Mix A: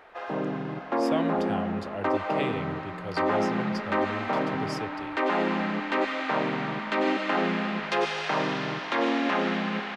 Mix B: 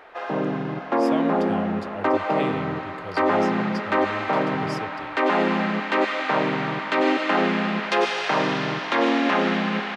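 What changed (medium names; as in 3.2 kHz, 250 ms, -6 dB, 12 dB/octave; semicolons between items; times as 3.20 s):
first sound +5.0 dB; second sound: add tilt EQ +3 dB/octave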